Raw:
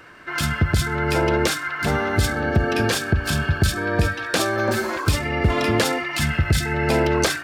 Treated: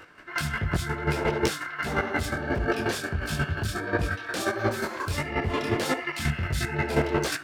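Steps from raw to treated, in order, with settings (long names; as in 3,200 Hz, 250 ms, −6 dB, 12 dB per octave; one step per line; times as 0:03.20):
hard clipping −14.5 dBFS, distortion −15 dB
square-wave tremolo 5.6 Hz, depth 65%, duty 15%
micro pitch shift up and down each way 52 cents
level +4 dB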